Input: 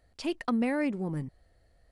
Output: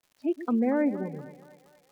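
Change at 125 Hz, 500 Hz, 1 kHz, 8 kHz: −4.5 dB, +4.5 dB, +0.5 dB, can't be measured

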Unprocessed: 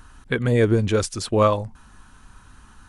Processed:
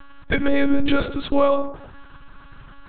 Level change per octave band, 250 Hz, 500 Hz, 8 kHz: +3.0 dB, −1.0 dB, below −40 dB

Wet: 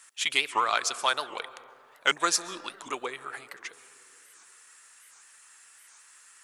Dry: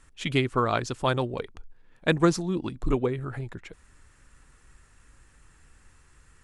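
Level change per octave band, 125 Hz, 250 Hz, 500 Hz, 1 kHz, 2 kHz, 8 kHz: −29.5, −17.0, −9.5, +2.0, +4.0, +11.0 decibels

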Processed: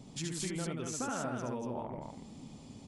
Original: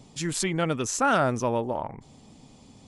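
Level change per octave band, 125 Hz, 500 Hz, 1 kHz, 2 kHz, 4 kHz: −9.0, −12.5, −14.5, −15.0, −9.0 decibels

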